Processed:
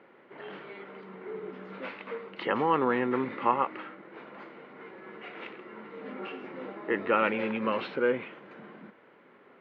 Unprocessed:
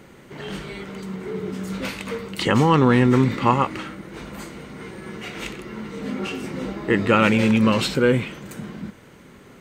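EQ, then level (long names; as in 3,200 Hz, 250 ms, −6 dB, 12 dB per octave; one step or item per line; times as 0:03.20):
band-pass filter 410–2,700 Hz
high-frequency loss of the air 280 metres
−4.5 dB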